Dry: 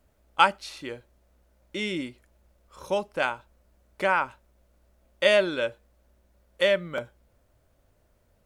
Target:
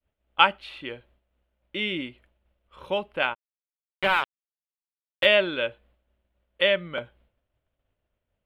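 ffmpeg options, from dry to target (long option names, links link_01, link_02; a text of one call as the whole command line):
ffmpeg -i in.wav -filter_complex "[0:a]asplit=3[link_01][link_02][link_03];[link_01]afade=type=out:start_time=3.33:duration=0.02[link_04];[link_02]acrusher=bits=3:mix=0:aa=0.5,afade=type=in:start_time=3.33:duration=0.02,afade=type=out:start_time=5.25:duration=0.02[link_05];[link_03]afade=type=in:start_time=5.25:duration=0.02[link_06];[link_04][link_05][link_06]amix=inputs=3:normalize=0,agate=range=-33dB:threshold=-55dB:ratio=3:detection=peak,highshelf=frequency=4300:width_type=q:width=3:gain=-12,volume=-1dB" out.wav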